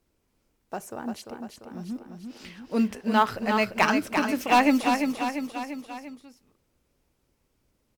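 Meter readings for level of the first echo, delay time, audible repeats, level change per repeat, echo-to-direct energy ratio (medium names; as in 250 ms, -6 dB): -6.0 dB, 345 ms, 4, -5.0 dB, -4.5 dB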